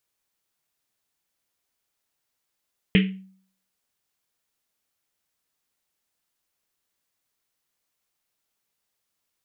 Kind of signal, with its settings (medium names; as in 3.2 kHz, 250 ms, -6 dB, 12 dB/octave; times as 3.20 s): Risset drum, pitch 190 Hz, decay 0.55 s, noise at 2.5 kHz, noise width 1.3 kHz, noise 25%